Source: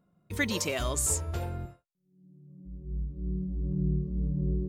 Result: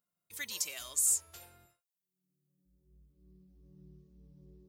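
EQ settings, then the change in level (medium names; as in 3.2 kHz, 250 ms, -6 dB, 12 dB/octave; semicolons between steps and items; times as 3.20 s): pre-emphasis filter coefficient 0.97; 0.0 dB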